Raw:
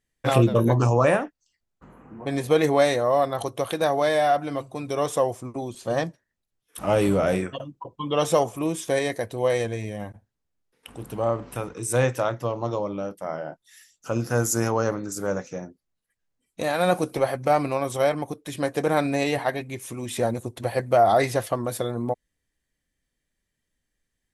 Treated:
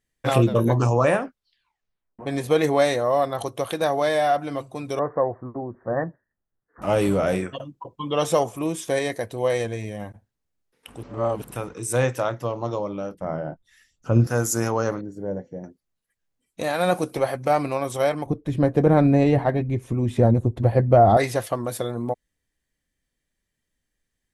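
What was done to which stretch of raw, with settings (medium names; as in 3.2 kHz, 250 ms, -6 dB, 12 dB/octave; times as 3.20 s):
1.16 s: tape stop 1.03 s
4.99–6.82 s: steep low-pass 1.9 kHz 96 dB/octave
11.03–11.51 s: reverse
13.14–14.27 s: RIAA curve playback
15.01–15.64 s: boxcar filter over 35 samples
18.26–21.17 s: tilt EQ -4.5 dB/octave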